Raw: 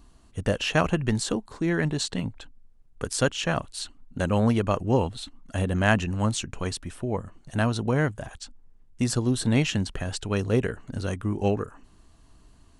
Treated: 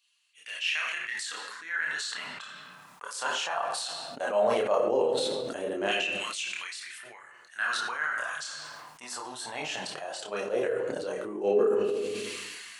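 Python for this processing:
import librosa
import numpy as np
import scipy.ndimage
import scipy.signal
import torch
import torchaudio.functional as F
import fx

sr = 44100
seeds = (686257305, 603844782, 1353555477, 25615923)

y = fx.filter_lfo_highpass(x, sr, shape='saw_down', hz=0.17, low_hz=370.0, high_hz=2800.0, q=3.6)
y = fx.chorus_voices(y, sr, voices=6, hz=0.19, base_ms=29, depth_ms=4.6, mix_pct=50)
y = fx.room_shoebox(y, sr, seeds[0], volume_m3=230.0, walls='mixed', distance_m=0.41)
y = fx.sustainer(y, sr, db_per_s=22.0)
y = F.gain(torch.from_numpy(y), -5.0).numpy()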